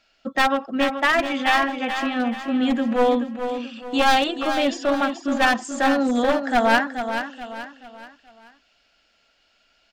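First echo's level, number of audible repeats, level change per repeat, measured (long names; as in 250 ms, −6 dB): −8.5 dB, 4, −8.0 dB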